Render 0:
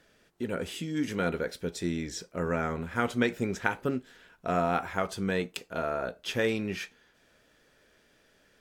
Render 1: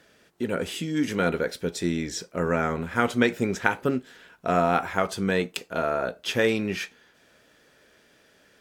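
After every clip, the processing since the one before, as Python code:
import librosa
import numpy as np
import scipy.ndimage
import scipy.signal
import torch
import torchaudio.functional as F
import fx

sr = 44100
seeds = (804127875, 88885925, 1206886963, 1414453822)

y = fx.highpass(x, sr, hz=95.0, slope=6)
y = F.gain(torch.from_numpy(y), 5.5).numpy()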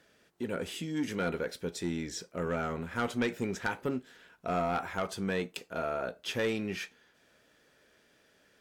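y = 10.0 ** (-16.0 / 20.0) * np.tanh(x / 10.0 ** (-16.0 / 20.0))
y = F.gain(torch.from_numpy(y), -6.5).numpy()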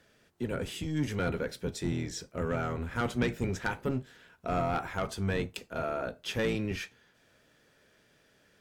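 y = fx.octave_divider(x, sr, octaves=1, level_db=0.0)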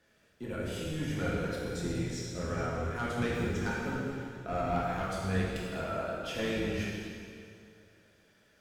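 y = fx.rev_plate(x, sr, seeds[0], rt60_s=2.4, hf_ratio=0.9, predelay_ms=0, drr_db=-6.0)
y = F.gain(torch.from_numpy(y), -7.5).numpy()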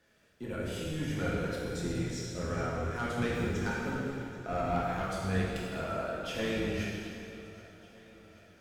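y = fx.echo_feedback(x, sr, ms=779, feedback_pct=59, wet_db=-19)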